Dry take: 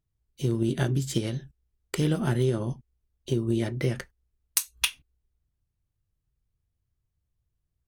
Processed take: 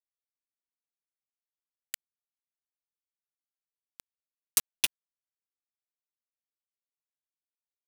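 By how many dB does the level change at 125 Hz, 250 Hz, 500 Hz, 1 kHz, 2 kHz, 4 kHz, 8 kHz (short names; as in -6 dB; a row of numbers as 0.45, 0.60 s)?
under -40 dB, -35.0 dB, -31.0 dB, -13.5 dB, -7.0 dB, -3.5 dB, -1.5 dB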